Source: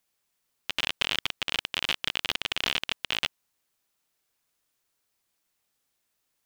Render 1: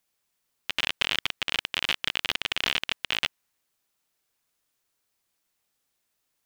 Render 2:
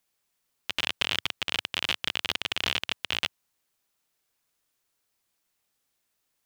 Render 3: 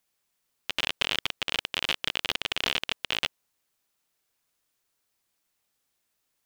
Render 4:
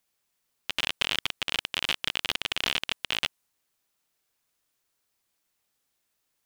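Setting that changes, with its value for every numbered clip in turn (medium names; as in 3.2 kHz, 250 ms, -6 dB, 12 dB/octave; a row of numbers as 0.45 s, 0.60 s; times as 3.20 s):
dynamic bell, frequency: 1.9 kHz, 100 Hz, 490 Hz, 9.9 kHz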